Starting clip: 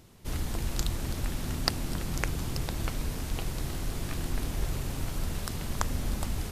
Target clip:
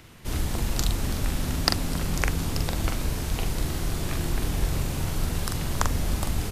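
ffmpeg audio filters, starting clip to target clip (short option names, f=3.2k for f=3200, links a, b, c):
-filter_complex "[0:a]acrossover=split=280|1400|2700[a][b][c][d];[c]acompressor=mode=upward:threshold=-55dB:ratio=2.5[e];[a][b][e][d]amix=inputs=4:normalize=0,asplit=2[f][g];[g]adelay=43,volume=-5dB[h];[f][h]amix=inputs=2:normalize=0,volume=4.5dB"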